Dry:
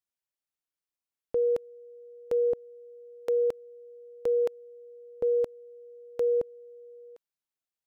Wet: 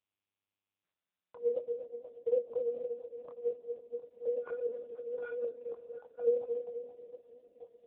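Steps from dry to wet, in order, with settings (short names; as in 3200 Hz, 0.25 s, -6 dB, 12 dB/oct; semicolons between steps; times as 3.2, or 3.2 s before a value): reverse delay 0.637 s, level -5 dB; 2.23–3.5 expander -40 dBFS; 4.38–5.49 sample leveller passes 3; wah 2.5 Hz 450–1100 Hz, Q 13; harmonic tremolo 4.1 Hz, depth 100%, crossover 480 Hz; chorus 1.1 Hz, delay 19 ms, depth 7.2 ms; delay with a stepping band-pass 0.236 s, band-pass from 390 Hz, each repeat 0.7 oct, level -6 dB; Schroeder reverb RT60 2.4 s, combs from 31 ms, DRR 14 dB; gain +13.5 dB; AMR-NB 5.9 kbps 8000 Hz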